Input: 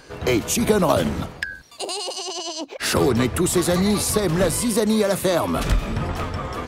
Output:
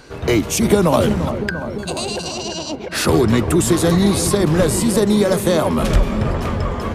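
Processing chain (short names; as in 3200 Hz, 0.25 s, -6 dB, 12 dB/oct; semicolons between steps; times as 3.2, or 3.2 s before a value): low shelf 390 Hz +3.5 dB; dark delay 0.331 s, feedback 72%, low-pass 1500 Hz, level -10 dB; speed mistake 25 fps video run at 24 fps; gain +2 dB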